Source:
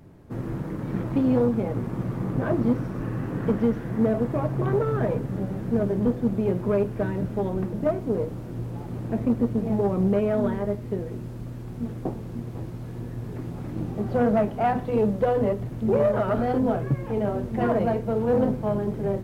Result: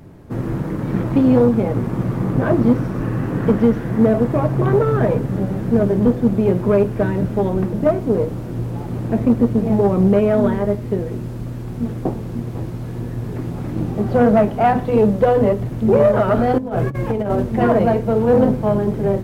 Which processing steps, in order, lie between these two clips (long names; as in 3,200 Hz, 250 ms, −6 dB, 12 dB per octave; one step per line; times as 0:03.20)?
0:16.58–0:17.43: compressor whose output falls as the input rises −27 dBFS, ratio −0.5
level +8 dB